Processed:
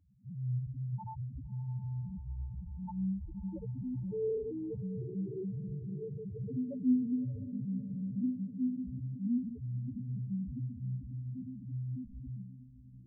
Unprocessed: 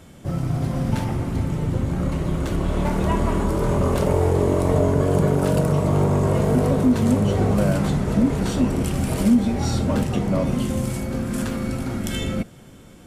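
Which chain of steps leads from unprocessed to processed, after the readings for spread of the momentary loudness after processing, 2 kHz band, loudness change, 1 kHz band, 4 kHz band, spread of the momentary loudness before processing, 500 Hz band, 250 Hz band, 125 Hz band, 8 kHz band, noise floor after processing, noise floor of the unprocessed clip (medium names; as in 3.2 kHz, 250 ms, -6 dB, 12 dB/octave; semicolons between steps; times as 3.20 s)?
8 LU, under -40 dB, -16.5 dB, under -25 dB, under -40 dB, 7 LU, -20.0 dB, -14.5 dB, -16.0 dB, under -40 dB, -53 dBFS, -45 dBFS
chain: feedback comb 63 Hz, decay 0.53 s, harmonics all, mix 90%; loudest bins only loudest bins 1; echo that smears into a reverb 623 ms, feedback 41%, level -14 dB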